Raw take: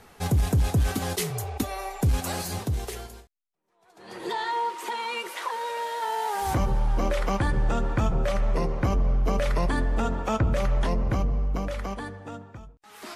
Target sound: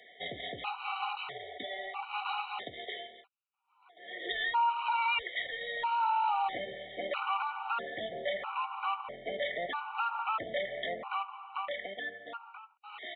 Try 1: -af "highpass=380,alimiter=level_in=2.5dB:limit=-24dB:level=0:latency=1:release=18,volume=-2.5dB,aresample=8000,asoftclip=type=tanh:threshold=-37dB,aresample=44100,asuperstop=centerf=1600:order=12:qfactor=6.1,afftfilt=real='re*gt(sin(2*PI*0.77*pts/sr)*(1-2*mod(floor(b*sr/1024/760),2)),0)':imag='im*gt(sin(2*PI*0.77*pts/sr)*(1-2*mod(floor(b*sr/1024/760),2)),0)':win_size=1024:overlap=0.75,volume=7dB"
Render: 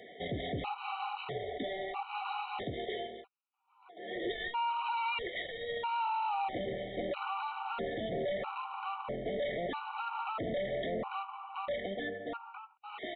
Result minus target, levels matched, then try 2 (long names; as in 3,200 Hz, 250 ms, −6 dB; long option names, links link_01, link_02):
soft clipping: distortion +12 dB; 500 Hz band +5.5 dB
-af "highpass=990,alimiter=level_in=2.5dB:limit=-24dB:level=0:latency=1:release=18,volume=-2.5dB,aresample=8000,asoftclip=type=tanh:threshold=-27.5dB,aresample=44100,asuperstop=centerf=1600:order=12:qfactor=6.1,afftfilt=real='re*gt(sin(2*PI*0.77*pts/sr)*(1-2*mod(floor(b*sr/1024/760),2)),0)':imag='im*gt(sin(2*PI*0.77*pts/sr)*(1-2*mod(floor(b*sr/1024/760),2)),0)':win_size=1024:overlap=0.75,volume=7dB"